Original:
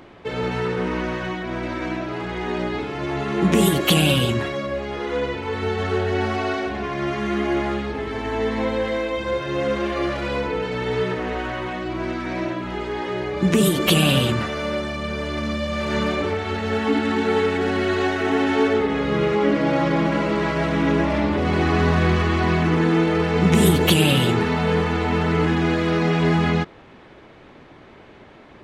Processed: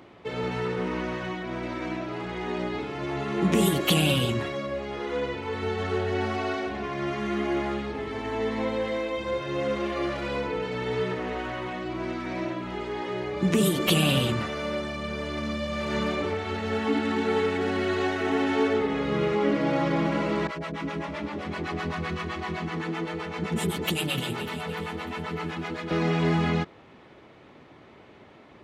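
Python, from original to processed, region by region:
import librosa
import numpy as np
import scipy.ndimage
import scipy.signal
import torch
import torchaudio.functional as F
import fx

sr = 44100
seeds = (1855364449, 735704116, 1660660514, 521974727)

y = fx.chain(x, sr, fx.low_shelf(hz=420.0, db=-5.5),
    fx.harmonic_tremolo(hz=7.8, depth_pct=100, crossover_hz=510.0),
    fx.echo_split(split_hz=440.0, low_ms=91, high_ms=298, feedback_pct=52, wet_db=-11), at=(20.47, 25.91))
y = scipy.signal.sosfilt(scipy.signal.butter(2, 68.0, 'highpass', fs=sr, output='sos'), y)
y = fx.notch(y, sr, hz=1600.0, q=15.0)
y = y * librosa.db_to_amplitude(-5.0)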